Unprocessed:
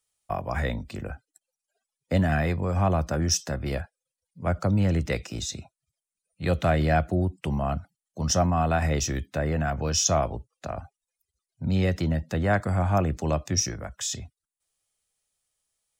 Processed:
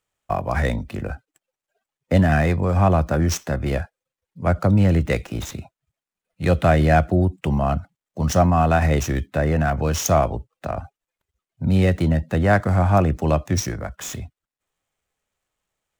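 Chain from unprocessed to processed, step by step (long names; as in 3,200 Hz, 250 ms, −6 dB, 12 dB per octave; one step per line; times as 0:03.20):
running median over 9 samples
level +6.5 dB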